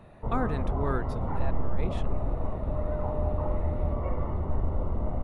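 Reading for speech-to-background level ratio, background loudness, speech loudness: -4.0 dB, -32.0 LUFS, -36.0 LUFS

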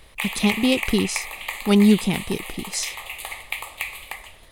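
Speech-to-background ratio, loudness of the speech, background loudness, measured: 8.5 dB, -22.0 LUFS, -30.5 LUFS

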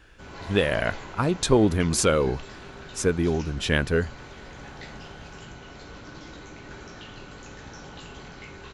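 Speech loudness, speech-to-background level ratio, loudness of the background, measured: -24.0 LUFS, 18.0 dB, -42.0 LUFS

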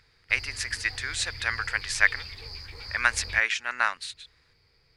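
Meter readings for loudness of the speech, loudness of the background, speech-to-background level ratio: -27.0 LUFS, -39.5 LUFS, 12.5 dB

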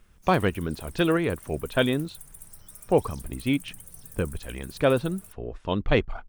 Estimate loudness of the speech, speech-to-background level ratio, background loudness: -26.5 LUFS, 19.0 dB, -45.5 LUFS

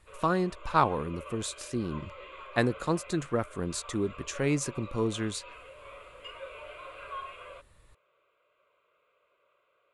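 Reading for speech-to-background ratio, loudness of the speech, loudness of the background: 14.5 dB, -31.0 LUFS, -45.5 LUFS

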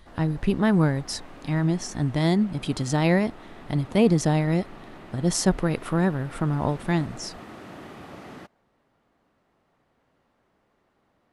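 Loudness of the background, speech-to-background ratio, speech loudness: -44.5 LUFS, 20.0 dB, -24.5 LUFS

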